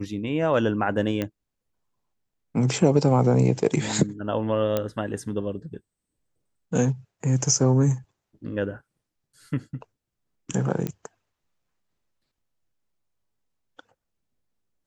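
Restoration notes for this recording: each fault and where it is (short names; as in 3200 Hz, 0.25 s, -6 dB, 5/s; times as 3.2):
1.22 pop -14 dBFS
4.77 pop -11 dBFS
10.87 pop -15 dBFS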